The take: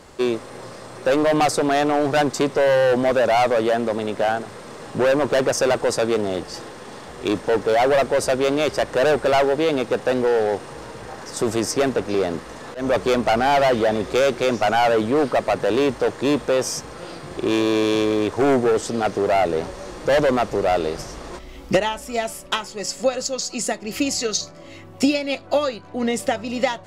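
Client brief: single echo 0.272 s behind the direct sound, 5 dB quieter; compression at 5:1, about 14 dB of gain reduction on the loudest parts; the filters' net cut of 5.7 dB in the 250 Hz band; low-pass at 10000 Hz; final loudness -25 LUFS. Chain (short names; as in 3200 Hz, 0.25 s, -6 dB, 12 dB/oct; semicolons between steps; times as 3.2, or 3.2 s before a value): LPF 10000 Hz; bell 250 Hz -7.5 dB; compressor 5:1, threshold -32 dBFS; echo 0.272 s -5 dB; gain +8.5 dB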